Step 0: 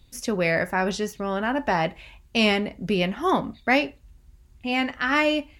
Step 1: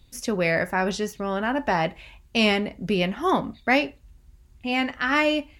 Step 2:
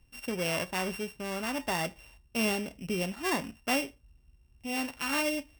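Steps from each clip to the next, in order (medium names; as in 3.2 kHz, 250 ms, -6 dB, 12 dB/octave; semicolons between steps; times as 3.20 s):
no audible change
sorted samples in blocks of 16 samples; trim -8.5 dB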